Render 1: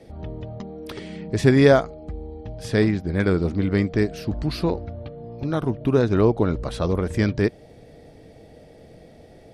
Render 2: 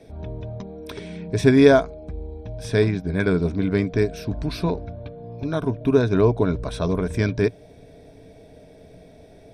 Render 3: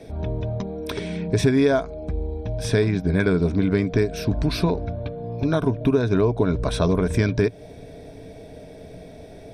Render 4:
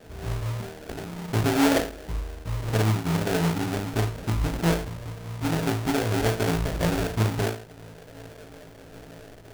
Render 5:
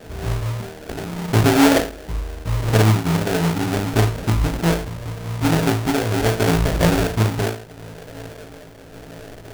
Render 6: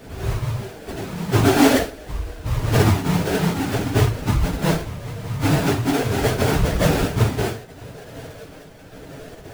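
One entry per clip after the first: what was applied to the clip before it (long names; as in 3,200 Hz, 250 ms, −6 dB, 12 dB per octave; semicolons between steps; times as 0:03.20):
EQ curve with evenly spaced ripples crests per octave 1.6, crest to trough 8 dB; level −1 dB
downward compressor 5 to 1, threshold −22 dBFS, peak gain reduction 13 dB; level +6 dB
on a send: flutter between parallel walls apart 3.1 metres, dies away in 0.41 s; on the sum: sample-rate reduction 1,100 Hz, jitter 20%; level −8 dB
amplitude tremolo 0.74 Hz, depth 39%; level +8.5 dB
random phases in long frames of 50 ms; level −1 dB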